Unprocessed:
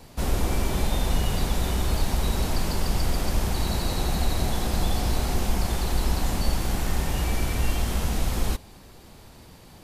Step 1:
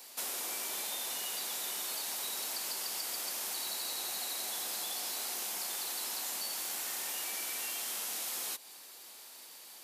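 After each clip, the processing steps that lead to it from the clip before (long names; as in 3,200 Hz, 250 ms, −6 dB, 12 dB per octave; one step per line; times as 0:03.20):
Bessel high-pass filter 350 Hz, order 4
spectral tilt +4 dB per octave
downward compressor 5 to 1, threshold −29 dBFS, peak gain reduction 7 dB
level −6 dB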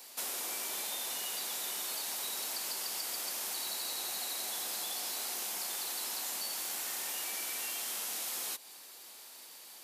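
no processing that can be heard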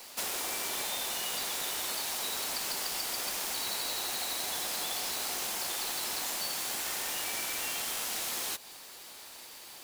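each half-wave held at its own peak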